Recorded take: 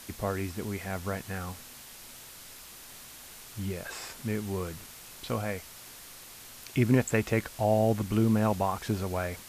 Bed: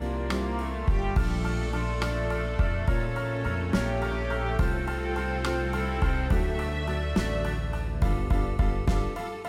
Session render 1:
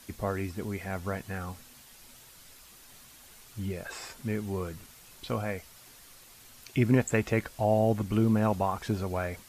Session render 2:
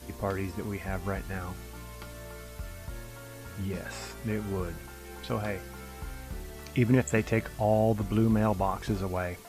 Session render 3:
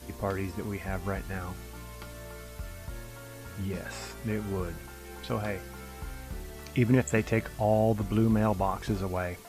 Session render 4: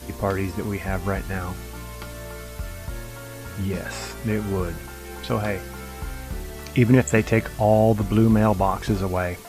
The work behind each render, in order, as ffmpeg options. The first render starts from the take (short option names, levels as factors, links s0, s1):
-af "afftdn=nr=7:nf=-48"
-filter_complex "[1:a]volume=0.158[s0];[0:a][s0]amix=inputs=2:normalize=0"
-af anull
-af "volume=2.37"